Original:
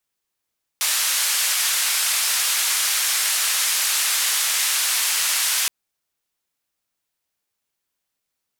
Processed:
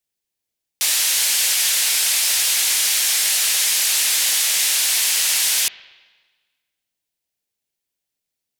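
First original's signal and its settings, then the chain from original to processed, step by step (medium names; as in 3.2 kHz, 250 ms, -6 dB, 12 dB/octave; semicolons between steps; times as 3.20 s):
noise band 1.3–12 kHz, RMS -21 dBFS 4.87 s
peaking EQ 1.2 kHz -10 dB 0.92 oct; waveshaping leveller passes 1; spring tank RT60 1.4 s, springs 39/53/58 ms, chirp 35 ms, DRR 14 dB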